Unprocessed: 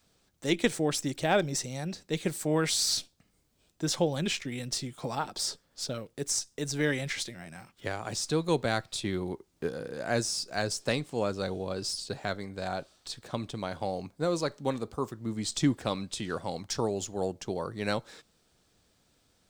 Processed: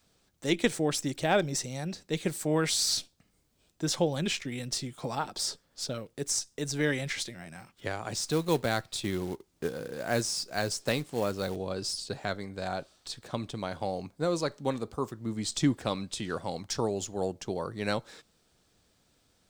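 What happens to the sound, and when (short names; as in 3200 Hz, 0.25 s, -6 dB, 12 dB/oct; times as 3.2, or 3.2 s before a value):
8.15–11.56 short-mantissa float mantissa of 2-bit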